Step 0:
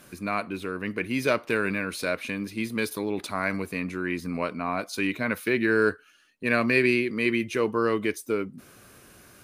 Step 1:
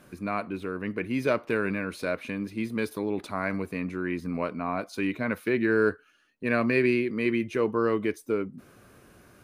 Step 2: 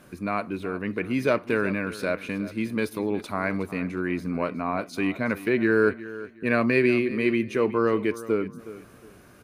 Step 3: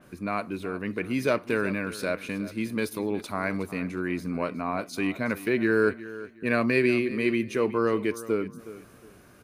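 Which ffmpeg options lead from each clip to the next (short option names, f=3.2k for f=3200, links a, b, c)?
-af "highshelf=f=2.2k:g=-10"
-af "aecho=1:1:365|730|1095:0.158|0.0412|0.0107,volume=2.5dB"
-af "adynamicequalizer=threshold=0.00631:dfrequency=3900:dqfactor=0.7:tfrequency=3900:tqfactor=0.7:attack=5:release=100:ratio=0.375:range=3:mode=boostabove:tftype=highshelf,volume=-2dB"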